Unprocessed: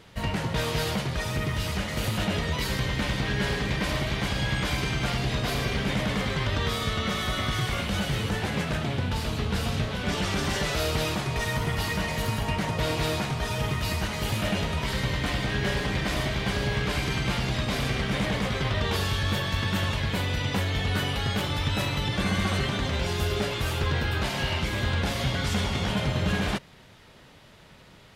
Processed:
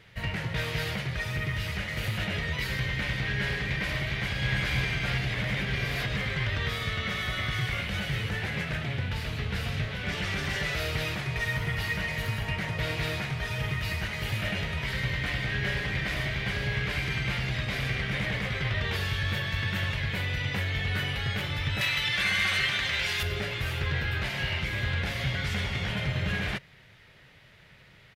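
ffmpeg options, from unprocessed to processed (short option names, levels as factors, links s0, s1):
-filter_complex "[0:a]asplit=2[s0][s1];[s1]afade=t=in:st=4.09:d=0.01,afade=t=out:st=4.52:d=0.01,aecho=0:1:330|660|990|1320|1650|1980|2310|2640|2970|3300|3630|3960:0.668344|0.501258|0.375943|0.281958|0.211468|0.158601|0.118951|0.0892131|0.0669099|0.0501824|0.0376368|0.0282276[s2];[s0][s2]amix=inputs=2:normalize=0,asettb=1/sr,asplit=3[s3][s4][s5];[s3]atrim=end=21.814[s6];[s4]atrim=start=21.81:end=23.23,asetpts=PTS-STARTPTS,afade=t=in:d=0.004:c=qsin,afade=t=out:st=1.416:d=0.004:c=qsin,tiltshelf=f=770:g=-8.5[s7];[s5]atrim=start=23.226[s8];[s6][s7]acrossfade=d=0.004:c1=hsin:c2=qsin[s9];[s9][s8]acrossfade=d=0.004:c1=qsin:c2=hsin,asplit=3[s10][s11][s12];[s10]atrim=end=5.342[s13];[s11]atrim=start=5.338:end=6.162,asetpts=PTS-STARTPTS,areverse[s14];[s12]atrim=start=6.158[s15];[s13][s14]acrossfade=d=0.004:c1=hsin:c2=hsin[s16];[s16][s15]acrossfade=d=0.004:c1=hsin:c2=hsin,equalizer=f=125:t=o:w=1:g=5,equalizer=f=250:t=o:w=1:g=-6,equalizer=f=1000:t=o:w=1:g=-5,equalizer=f=2000:t=o:w=1:g=9,equalizer=f=8000:t=o:w=1:g=-5,volume=0.562"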